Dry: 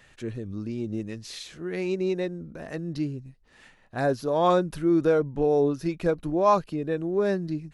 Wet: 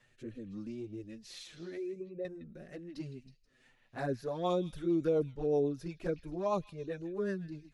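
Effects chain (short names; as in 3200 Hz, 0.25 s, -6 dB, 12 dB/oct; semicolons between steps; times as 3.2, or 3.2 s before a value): 1.77–2.25 formant sharpening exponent 2; envelope flanger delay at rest 8.6 ms, full sweep at -17.5 dBFS; on a send: delay with a stepping band-pass 0.16 s, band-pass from 2800 Hz, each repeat 0.7 oct, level -10 dB; on the sum: rotary speaker horn 1.2 Hz, later 8 Hz, at 3.87; gain -5.5 dB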